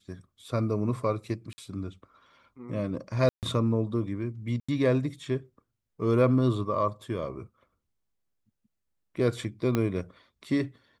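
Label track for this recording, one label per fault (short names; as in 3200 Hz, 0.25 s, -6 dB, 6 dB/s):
1.530000	1.580000	gap 50 ms
3.290000	3.430000	gap 0.138 s
4.600000	4.680000	gap 85 ms
9.750000	9.750000	pop -13 dBFS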